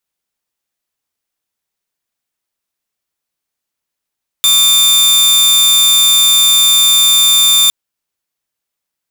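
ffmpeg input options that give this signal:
-f lavfi -i "aevalsrc='0.631*(2*mod(3580*t,1)-1)':d=3.26:s=44100"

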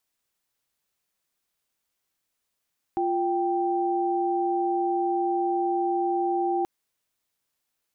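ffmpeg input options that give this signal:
-f lavfi -i "aevalsrc='0.0562*(sin(2*PI*349.23*t)+sin(2*PI*783.99*t))':d=3.68:s=44100"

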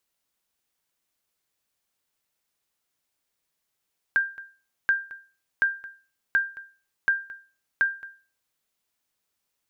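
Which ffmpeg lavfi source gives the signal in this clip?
-f lavfi -i "aevalsrc='0.2*(sin(2*PI*1590*mod(t,0.73))*exp(-6.91*mod(t,0.73)/0.36)+0.112*sin(2*PI*1590*max(mod(t,0.73)-0.22,0))*exp(-6.91*max(mod(t,0.73)-0.22,0)/0.36))':d=4.38:s=44100"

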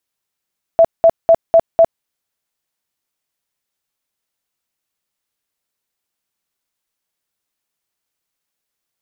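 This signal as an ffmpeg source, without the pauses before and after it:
-f lavfi -i "aevalsrc='0.596*sin(2*PI*662*mod(t,0.25))*lt(mod(t,0.25),37/662)':d=1.25:s=44100"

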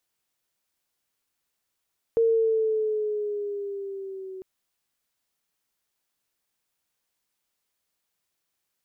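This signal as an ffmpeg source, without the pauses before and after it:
-f lavfi -i "aevalsrc='pow(10,(-17-18.5*t/2.25)/20)*sin(2*PI*459*2.25/(-3.5*log(2)/12)*(exp(-3.5*log(2)/12*t/2.25)-1))':d=2.25:s=44100"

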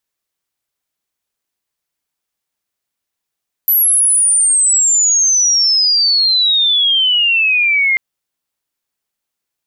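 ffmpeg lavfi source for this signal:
-f lavfi -i "aevalsrc='pow(10,(-8.5-1.5*t/4.29)/20)*sin(2*PI*12000*4.29/log(2100/12000)*(exp(log(2100/12000)*t/4.29)-1))':d=4.29:s=44100"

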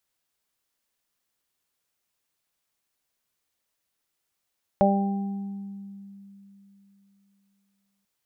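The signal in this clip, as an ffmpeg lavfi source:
-f lavfi -i "aevalsrc='0.106*pow(10,-3*t/3.44)*sin(2*PI*198*t)+0.0473*pow(10,-3*t/1.35)*sin(2*PI*396*t)+0.168*pow(10,-3*t/0.46)*sin(2*PI*594*t)+0.1*pow(10,-3*t/1.21)*sin(2*PI*792*t)':d=3.24:s=44100"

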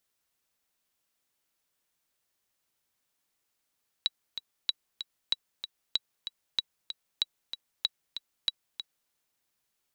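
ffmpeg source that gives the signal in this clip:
-f lavfi -i "aevalsrc='pow(10,(-12.5-10*gte(mod(t,2*60/190),60/190))/20)*sin(2*PI*3900*mod(t,60/190))*exp(-6.91*mod(t,60/190)/0.03)':d=5.05:s=44100"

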